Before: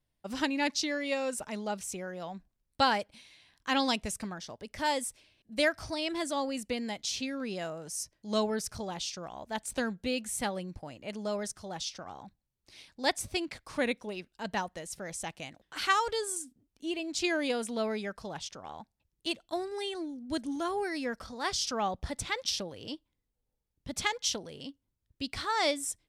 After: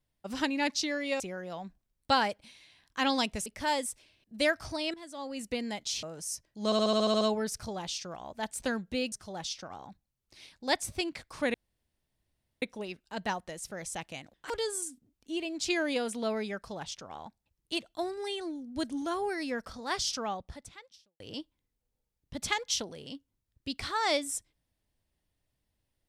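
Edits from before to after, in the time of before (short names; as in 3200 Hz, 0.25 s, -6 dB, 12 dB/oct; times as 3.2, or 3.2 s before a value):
1.2–1.9 cut
4.16–4.64 cut
6.12–6.66 fade in quadratic, from -14.5 dB
7.21–7.71 cut
8.33 stutter 0.07 s, 9 plays
10.24–11.48 cut
13.9 insert room tone 1.08 s
15.78–16.04 cut
21.62–22.74 fade out quadratic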